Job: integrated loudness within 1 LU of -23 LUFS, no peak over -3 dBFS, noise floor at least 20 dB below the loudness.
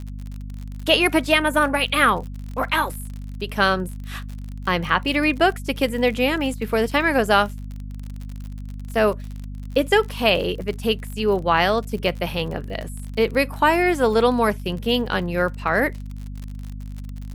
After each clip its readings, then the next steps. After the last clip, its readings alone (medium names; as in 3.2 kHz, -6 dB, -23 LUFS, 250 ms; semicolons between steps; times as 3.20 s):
tick rate 49 per s; hum 50 Hz; highest harmonic 250 Hz; hum level -30 dBFS; loudness -21.0 LUFS; peak level -3.5 dBFS; loudness target -23.0 LUFS
-> de-click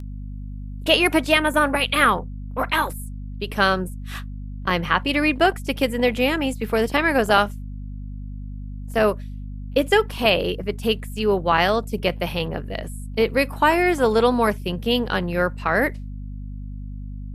tick rate 0.058 per s; hum 50 Hz; highest harmonic 250 Hz; hum level -30 dBFS
-> de-hum 50 Hz, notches 5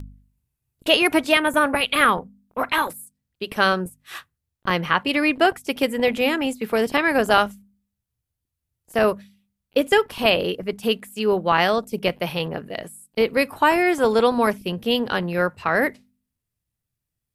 hum not found; loudness -21.0 LUFS; peak level -3.5 dBFS; loudness target -23.0 LUFS
-> trim -2 dB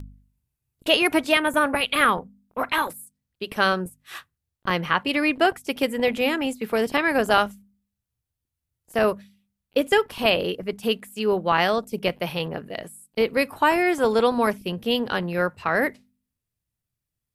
loudness -23.0 LUFS; peak level -5.5 dBFS; noise floor -85 dBFS